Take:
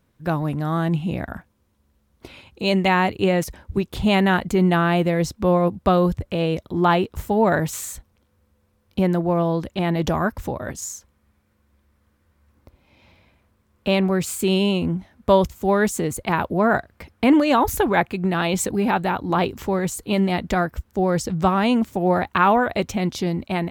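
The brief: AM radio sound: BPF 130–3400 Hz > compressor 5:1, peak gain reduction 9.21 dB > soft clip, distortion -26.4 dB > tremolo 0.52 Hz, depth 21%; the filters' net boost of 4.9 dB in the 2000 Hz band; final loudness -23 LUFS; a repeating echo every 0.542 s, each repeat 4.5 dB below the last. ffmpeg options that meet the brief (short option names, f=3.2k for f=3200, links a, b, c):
-af "highpass=130,lowpass=3.4k,equalizer=f=2k:t=o:g=7,aecho=1:1:542|1084|1626|2168|2710|3252|3794|4336|4878:0.596|0.357|0.214|0.129|0.0772|0.0463|0.0278|0.0167|0.01,acompressor=threshold=-19dB:ratio=5,asoftclip=threshold=-10.5dB,tremolo=f=0.52:d=0.21,volume=2.5dB"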